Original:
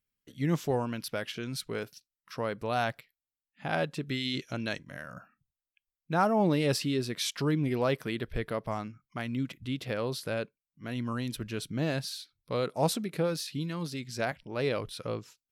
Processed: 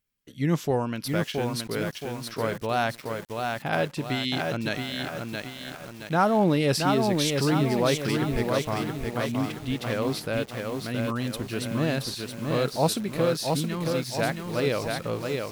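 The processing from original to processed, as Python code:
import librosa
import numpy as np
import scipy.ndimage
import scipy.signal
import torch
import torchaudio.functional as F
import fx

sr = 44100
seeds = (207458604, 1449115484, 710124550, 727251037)

y = fx.echo_crushed(x, sr, ms=672, feedback_pct=55, bits=8, wet_db=-3.5)
y = F.gain(torch.from_numpy(y), 4.0).numpy()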